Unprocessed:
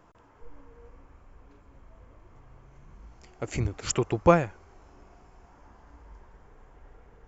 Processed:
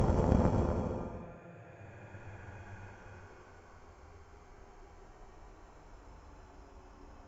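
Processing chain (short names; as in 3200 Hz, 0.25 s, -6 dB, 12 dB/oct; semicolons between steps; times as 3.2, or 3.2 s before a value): flipped gate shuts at -13 dBFS, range -32 dB; Paulstretch 10×, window 0.25 s, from 4.24; added harmonics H 3 -14 dB, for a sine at -18.5 dBFS; gain +7 dB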